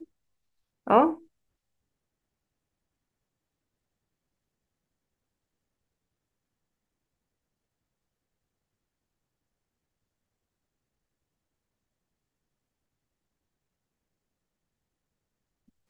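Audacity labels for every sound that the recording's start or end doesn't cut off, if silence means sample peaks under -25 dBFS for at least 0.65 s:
0.880000	1.100000	sound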